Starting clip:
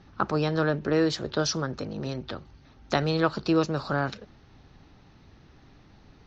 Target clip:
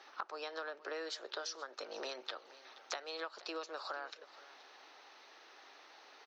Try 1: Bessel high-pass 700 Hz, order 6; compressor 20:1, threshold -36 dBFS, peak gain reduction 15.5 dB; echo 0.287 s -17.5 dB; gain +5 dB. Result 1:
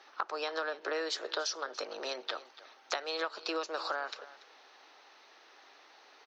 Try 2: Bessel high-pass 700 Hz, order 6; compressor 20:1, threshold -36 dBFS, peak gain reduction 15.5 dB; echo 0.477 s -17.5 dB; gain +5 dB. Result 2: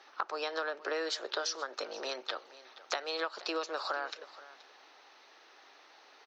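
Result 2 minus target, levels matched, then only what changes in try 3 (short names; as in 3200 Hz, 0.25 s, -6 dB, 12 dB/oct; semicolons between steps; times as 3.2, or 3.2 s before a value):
compressor: peak gain reduction -7.5 dB
change: compressor 20:1, threshold -44 dBFS, peak gain reduction 23.5 dB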